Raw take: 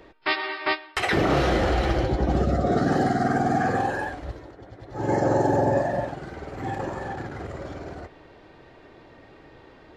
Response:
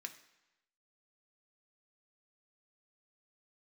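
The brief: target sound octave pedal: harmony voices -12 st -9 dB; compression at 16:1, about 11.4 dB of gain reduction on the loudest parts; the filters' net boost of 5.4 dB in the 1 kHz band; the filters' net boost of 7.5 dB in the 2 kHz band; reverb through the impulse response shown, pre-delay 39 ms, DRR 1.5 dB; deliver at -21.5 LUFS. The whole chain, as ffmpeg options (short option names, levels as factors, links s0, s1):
-filter_complex "[0:a]equalizer=f=1000:t=o:g=6.5,equalizer=f=2000:t=o:g=7,acompressor=threshold=0.0501:ratio=16,asplit=2[s0][s1];[1:a]atrim=start_sample=2205,adelay=39[s2];[s1][s2]afir=irnorm=-1:irlink=0,volume=1.19[s3];[s0][s3]amix=inputs=2:normalize=0,asplit=2[s4][s5];[s5]asetrate=22050,aresample=44100,atempo=2,volume=0.355[s6];[s4][s6]amix=inputs=2:normalize=0,volume=2.37"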